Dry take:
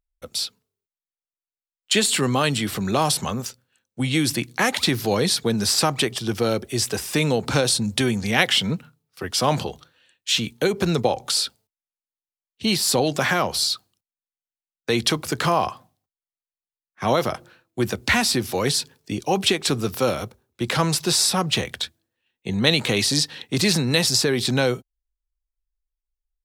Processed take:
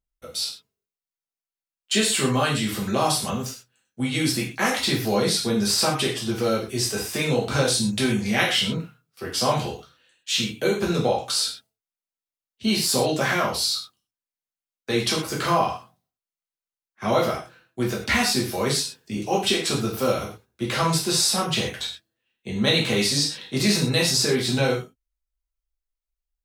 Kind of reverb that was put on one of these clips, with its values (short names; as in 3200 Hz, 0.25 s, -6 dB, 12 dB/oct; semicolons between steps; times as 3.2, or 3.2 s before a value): non-linear reverb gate 0.15 s falling, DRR -4.5 dB; gain -7 dB